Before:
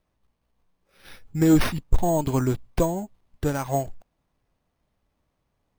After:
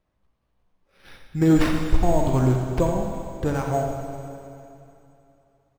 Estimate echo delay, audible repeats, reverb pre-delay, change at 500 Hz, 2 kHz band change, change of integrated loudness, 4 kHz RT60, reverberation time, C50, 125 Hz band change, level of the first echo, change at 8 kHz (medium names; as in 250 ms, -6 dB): 86 ms, 1, 34 ms, +2.0 dB, +1.0 dB, +1.5 dB, 2.8 s, 2.8 s, 2.5 dB, +3.5 dB, -8.5 dB, -4.0 dB